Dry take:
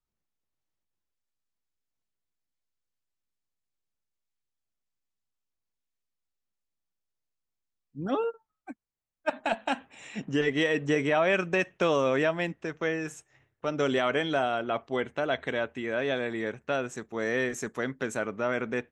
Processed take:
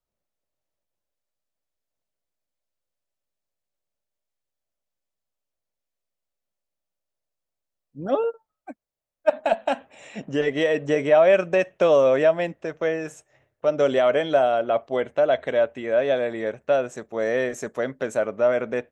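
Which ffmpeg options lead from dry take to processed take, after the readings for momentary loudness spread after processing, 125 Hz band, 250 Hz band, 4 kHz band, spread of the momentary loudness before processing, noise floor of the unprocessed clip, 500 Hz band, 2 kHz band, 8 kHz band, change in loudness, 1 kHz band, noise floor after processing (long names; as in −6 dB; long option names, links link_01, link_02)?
12 LU, 0.0 dB, +1.5 dB, 0.0 dB, 10 LU, −85 dBFS, +9.0 dB, +0.5 dB, can't be measured, +7.0 dB, +4.5 dB, −85 dBFS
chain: -af "equalizer=frequency=590:width_type=o:width=0.63:gain=12.5"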